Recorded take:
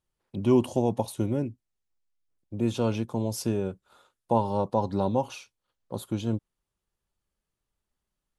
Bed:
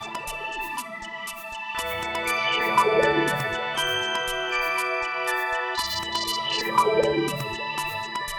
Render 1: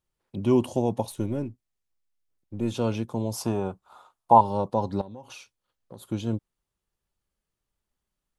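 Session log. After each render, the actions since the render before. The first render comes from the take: 1.11–2.72 s: partial rectifier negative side -3 dB; 3.33–4.41 s: high-order bell 910 Hz +12 dB 1.1 oct; 5.01–6.09 s: compression, threshold -39 dBFS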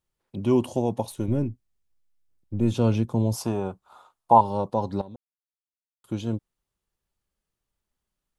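1.28–3.36 s: bass shelf 250 Hz +9.5 dB; 5.16–6.04 s: mute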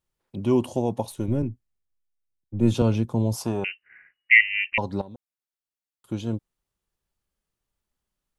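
1.42–2.82 s: three bands expanded up and down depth 40%; 3.64–4.78 s: frequency inversion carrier 2.9 kHz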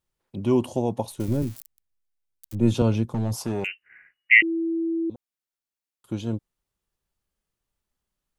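1.20–2.55 s: zero-crossing glitches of -28.5 dBFS; 3.10–3.67 s: hard clipper -20 dBFS; 4.42–5.10 s: bleep 330 Hz -22.5 dBFS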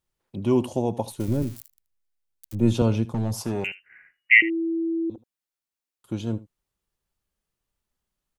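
delay 78 ms -18.5 dB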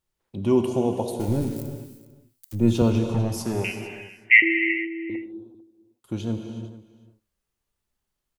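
delay 447 ms -18.5 dB; gated-style reverb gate 400 ms flat, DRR 5 dB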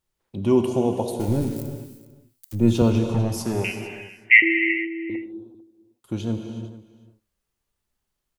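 trim +1.5 dB; peak limiter -3 dBFS, peak gain reduction 1 dB

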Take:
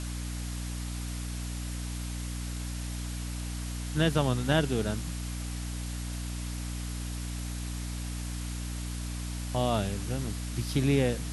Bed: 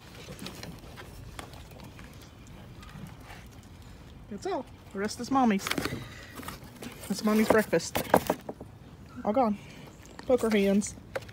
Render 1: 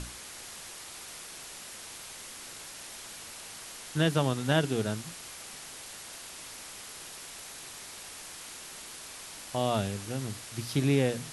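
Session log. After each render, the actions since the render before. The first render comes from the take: hum notches 60/120/180/240/300 Hz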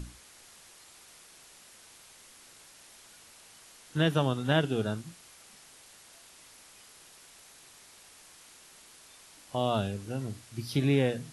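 noise print and reduce 10 dB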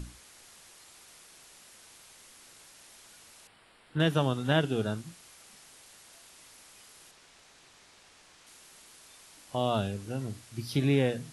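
3.47–4.00 s: boxcar filter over 7 samples; 7.11–8.47 s: distance through air 64 m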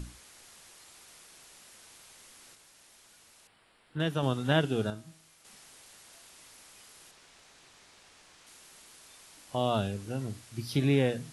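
2.55–4.23 s: gain -4.5 dB; 4.90–5.45 s: feedback comb 160 Hz, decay 0.64 s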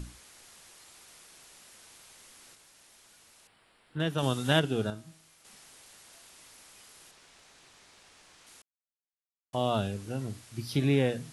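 4.18–4.60 s: treble shelf 3.9 kHz +11.5 dB; 8.62–9.53 s: mute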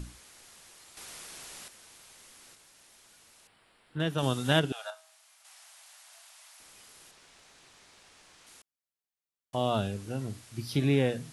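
0.97–1.68 s: gain +8.5 dB; 4.72–6.60 s: steep high-pass 600 Hz 72 dB/octave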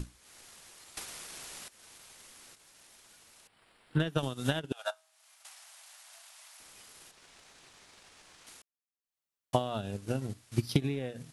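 compression 16:1, threshold -30 dBFS, peak gain reduction 12 dB; transient shaper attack +10 dB, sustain -9 dB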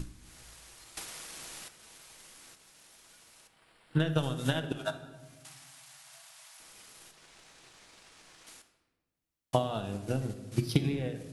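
simulated room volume 960 m³, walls mixed, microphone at 0.62 m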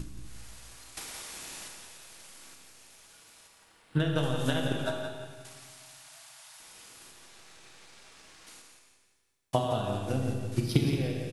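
feedback delay 173 ms, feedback 38%, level -8 dB; Schroeder reverb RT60 1.5 s, combs from 27 ms, DRR 3.5 dB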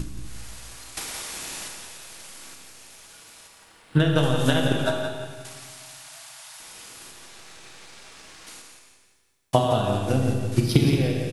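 trim +8 dB; peak limiter -3 dBFS, peak gain reduction 2 dB

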